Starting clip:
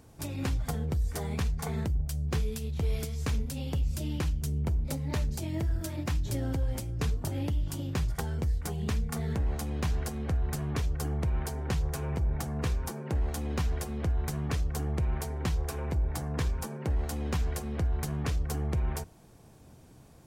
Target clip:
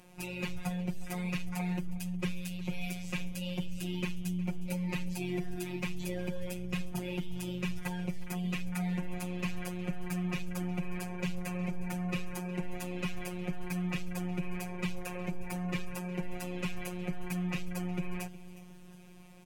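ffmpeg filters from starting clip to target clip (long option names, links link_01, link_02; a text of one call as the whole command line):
ffmpeg -i in.wav -filter_complex "[0:a]equalizer=frequency=2400:width_type=o:width=0.64:gain=11.5,afftfilt=real='hypot(re,im)*cos(PI*b)':imag='0':win_size=1024:overlap=0.75,aeval=exprs='(tanh(10*val(0)+0.6)-tanh(0.6))/10':channel_layout=same,asplit=2[link_01][link_02];[link_02]aecho=0:1:377|754|1131|1508:0.126|0.0604|0.029|0.0139[link_03];[link_01][link_03]amix=inputs=2:normalize=0,asetrate=45938,aresample=44100,volume=5.5dB" out.wav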